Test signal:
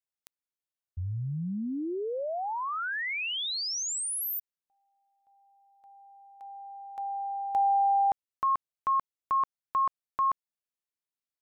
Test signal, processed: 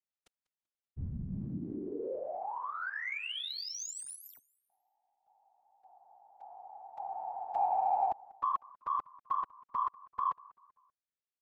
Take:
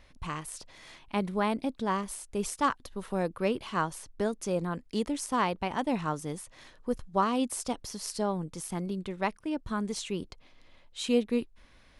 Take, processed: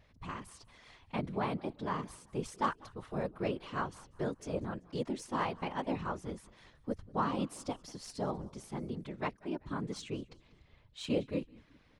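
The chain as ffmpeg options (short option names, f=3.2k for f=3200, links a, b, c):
-af "aecho=1:1:193|386|579:0.075|0.0307|0.0126,afftfilt=real='hypot(re,im)*cos(2*PI*random(0))':imag='hypot(re,im)*sin(2*PI*random(1))':win_size=512:overlap=0.75,adynamicsmooth=sensitivity=5:basefreq=6.6k"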